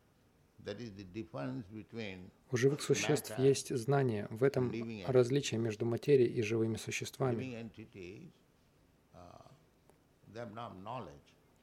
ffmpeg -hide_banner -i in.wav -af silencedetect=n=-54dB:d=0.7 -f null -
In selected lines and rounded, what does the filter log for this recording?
silence_start: 8.31
silence_end: 9.14 | silence_duration: 0.83